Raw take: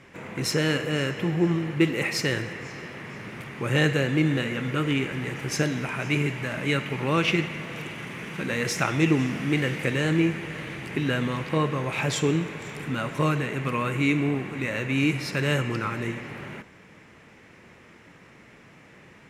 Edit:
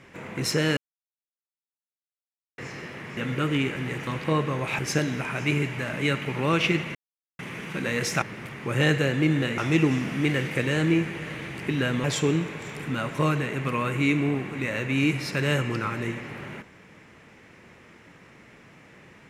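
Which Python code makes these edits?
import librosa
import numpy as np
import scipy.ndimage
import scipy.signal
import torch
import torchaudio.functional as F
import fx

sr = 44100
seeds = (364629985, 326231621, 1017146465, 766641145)

y = fx.edit(x, sr, fx.silence(start_s=0.77, length_s=1.81),
    fx.move(start_s=3.17, length_s=1.36, to_s=8.86),
    fx.silence(start_s=7.59, length_s=0.44),
    fx.move(start_s=11.32, length_s=0.72, to_s=5.43), tone=tone)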